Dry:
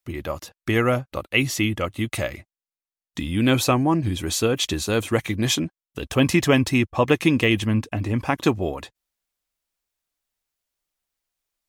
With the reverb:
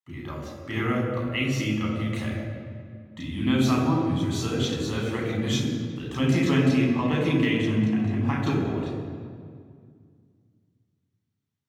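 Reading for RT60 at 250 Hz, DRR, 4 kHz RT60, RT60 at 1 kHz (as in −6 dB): 2.8 s, −4.0 dB, 1.4 s, 2.0 s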